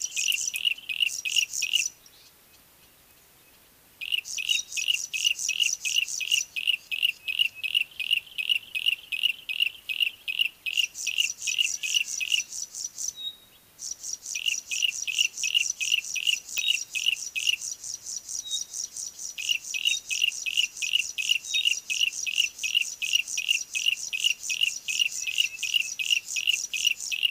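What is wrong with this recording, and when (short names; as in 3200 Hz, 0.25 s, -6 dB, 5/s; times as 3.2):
16.58 pop -9 dBFS
19.39 gap 4 ms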